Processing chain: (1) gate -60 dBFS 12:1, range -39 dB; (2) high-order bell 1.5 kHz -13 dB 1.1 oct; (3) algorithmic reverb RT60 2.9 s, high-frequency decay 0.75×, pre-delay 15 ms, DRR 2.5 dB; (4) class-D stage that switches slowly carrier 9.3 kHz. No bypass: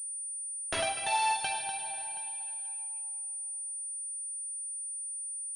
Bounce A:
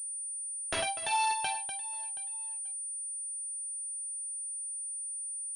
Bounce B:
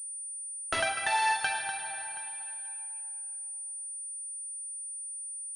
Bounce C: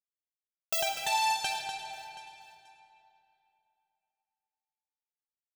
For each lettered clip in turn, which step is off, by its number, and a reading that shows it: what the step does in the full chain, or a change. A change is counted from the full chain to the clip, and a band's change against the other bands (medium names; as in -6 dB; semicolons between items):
3, 500 Hz band -1.5 dB; 2, 2 kHz band +6.0 dB; 4, 8 kHz band -10.5 dB